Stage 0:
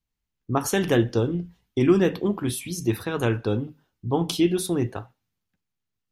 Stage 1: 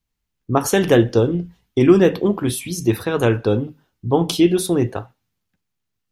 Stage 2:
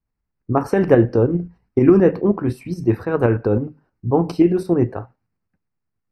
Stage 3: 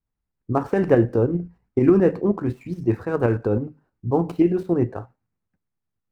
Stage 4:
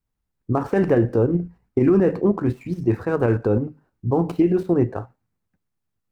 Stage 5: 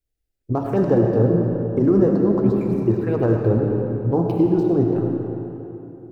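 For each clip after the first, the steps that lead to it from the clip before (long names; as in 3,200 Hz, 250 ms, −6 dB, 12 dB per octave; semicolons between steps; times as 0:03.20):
dynamic equaliser 520 Hz, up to +4 dB, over −37 dBFS, Q 1.6; level +5 dB
shaped tremolo saw up 9.5 Hz, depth 50%; moving average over 13 samples; level +3 dB
running median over 9 samples; level −3.5 dB
brickwall limiter −12 dBFS, peak gain reduction 7 dB; level +3 dB
phaser swept by the level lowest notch 180 Hz, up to 2,300 Hz, full sweep at −16 dBFS; convolution reverb RT60 3.2 s, pre-delay 40 ms, DRR 1 dB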